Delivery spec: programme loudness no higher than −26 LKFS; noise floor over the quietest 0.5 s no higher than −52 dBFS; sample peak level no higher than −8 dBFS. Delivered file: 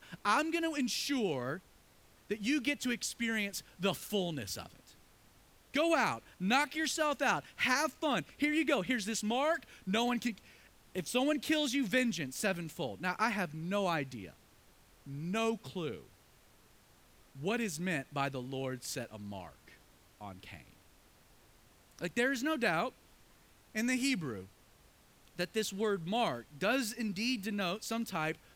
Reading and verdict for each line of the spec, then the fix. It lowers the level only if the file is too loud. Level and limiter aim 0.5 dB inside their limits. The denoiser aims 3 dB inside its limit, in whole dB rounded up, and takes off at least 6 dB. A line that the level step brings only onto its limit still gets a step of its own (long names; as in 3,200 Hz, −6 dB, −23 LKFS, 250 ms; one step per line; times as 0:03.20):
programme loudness −34.5 LKFS: in spec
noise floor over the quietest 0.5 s −64 dBFS: in spec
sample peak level −16.5 dBFS: in spec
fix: no processing needed